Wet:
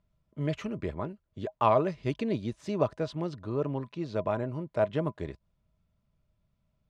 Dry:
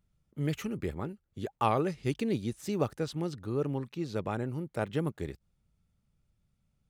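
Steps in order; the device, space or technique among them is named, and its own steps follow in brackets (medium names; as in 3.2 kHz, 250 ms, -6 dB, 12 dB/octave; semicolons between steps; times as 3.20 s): inside a cardboard box (low-pass 4.7 kHz 12 dB/octave; small resonant body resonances 630/1000 Hz, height 15 dB, ringing for 80 ms)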